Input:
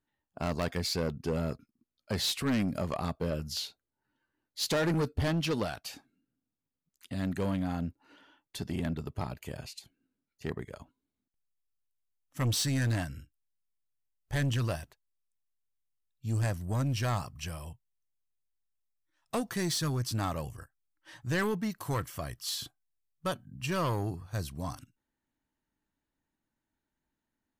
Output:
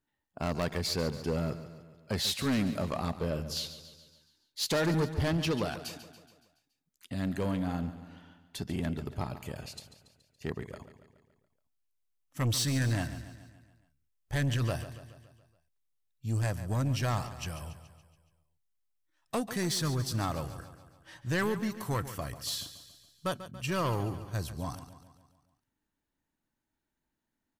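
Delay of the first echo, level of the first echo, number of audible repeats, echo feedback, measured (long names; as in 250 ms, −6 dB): 141 ms, −13.0 dB, 5, 55%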